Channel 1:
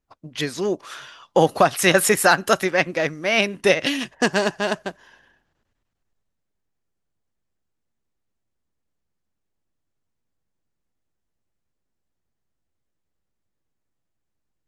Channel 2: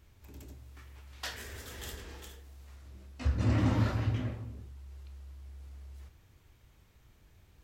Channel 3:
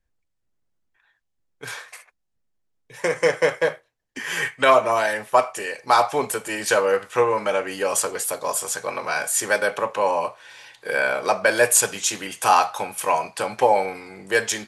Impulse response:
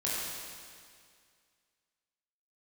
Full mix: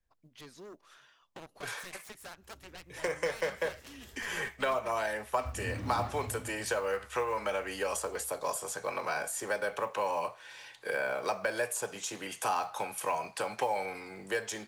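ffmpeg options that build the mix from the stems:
-filter_complex "[0:a]aeval=exprs='0.841*(cos(1*acos(clip(val(0)/0.841,-1,1)))-cos(1*PI/2))+0.188*(cos(7*acos(clip(val(0)/0.841,-1,1)))-cos(7*PI/2))':c=same,acompressor=threshold=0.1:ratio=10,volume=12.6,asoftclip=hard,volume=0.0794,volume=0.15[s0];[1:a]adelay=2200,volume=0.266[s1];[2:a]acrossover=split=150|380|1100[s2][s3][s4][s5];[s2]acompressor=threshold=0.00282:ratio=4[s6];[s3]acompressor=threshold=0.00708:ratio=4[s7];[s4]acompressor=threshold=0.0398:ratio=4[s8];[s5]acompressor=threshold=0.0251:ratio=4[s9];[s6][s7][s8][s9]amix=inputs=4:normalize=0,volume=0.562[s10];[s0][s1][s10]amix=inputs=3:normalize=0,acrusher=bits=8:mode=log:mix=0:aa=0.000001"

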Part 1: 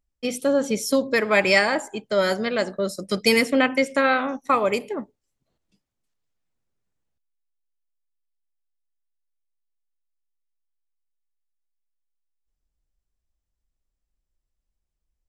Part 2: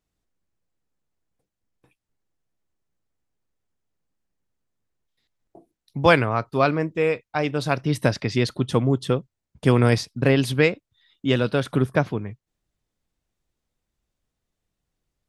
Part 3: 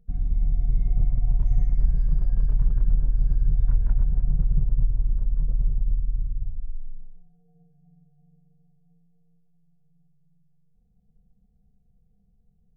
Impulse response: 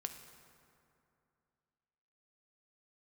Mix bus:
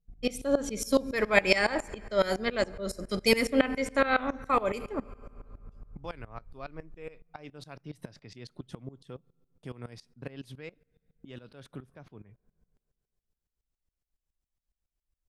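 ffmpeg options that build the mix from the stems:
-filter_complex "[0:a]volume=0.75,asplit=2[s0][s1];[s1]volume=0.562[s2];[1:a]agate=range=0.0224:threshold=0.00501:ratio=3:detection=peak,acompressor=threshold=0.0708:ratio=3,volume=0.251,asplit=2[s3][s4];[s4]volume=0.1[s5];[2:a]asoftclip=type=tanh:threshold=0.0562,acompressor=threshold=0.0141:ratio=4,volume=0.631[s6];[3:a]atrim=start_sample=2205[s7];[s2][s5]amix=inputs=2:normalize=0[s8];[s8][s7]afir=irnorm=-1:irlink=0[s9];[s0][s3][s6][s9]amix=inputs=4:normalize=0,aeval=exprs='val(0)*pow(10,-19*if(lt(mod(-7.2*n/s,1),2*abs(-7.2)/1000),1-mod(-7.2*n/s,1)/(2*abs(-7.2)/1000),(mod(-7.2*n/s,1)-2*abs(-7.2)/1000)/(1-2*abs(-7.2)/1000))/20)':c=same"

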